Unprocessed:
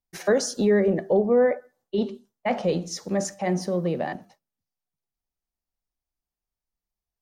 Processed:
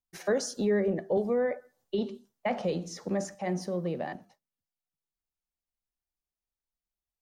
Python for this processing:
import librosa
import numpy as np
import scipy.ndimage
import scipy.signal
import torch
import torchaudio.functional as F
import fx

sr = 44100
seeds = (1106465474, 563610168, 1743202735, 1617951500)

y = fx.band_squash(x, sr, depth_pct=70, at=(1.17, 3.35))
y = y * 10.0 ** (-6.5 / 20.0)